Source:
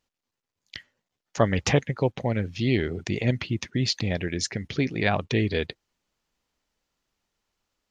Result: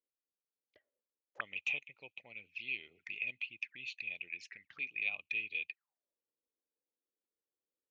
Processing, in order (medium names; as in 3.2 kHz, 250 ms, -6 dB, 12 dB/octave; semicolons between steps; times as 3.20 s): bass shelf 190 Hz +2.5 dB; touch-sensitive flanger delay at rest 3.7 ms, full sweep at -22.5 dBFS; auto-wah 410–2500 Hz, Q 18, up, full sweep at -27 dBFS; trim +6.5 dB